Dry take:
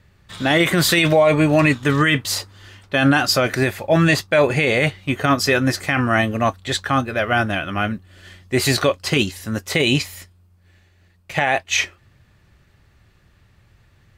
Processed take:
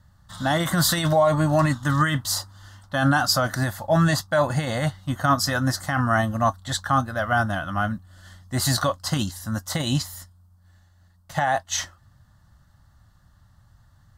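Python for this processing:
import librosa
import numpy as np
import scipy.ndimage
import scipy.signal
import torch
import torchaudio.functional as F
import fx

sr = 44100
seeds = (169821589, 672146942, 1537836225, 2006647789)

y = fx.fixed_phaser(x, sr, hz=1000.0, stages=4)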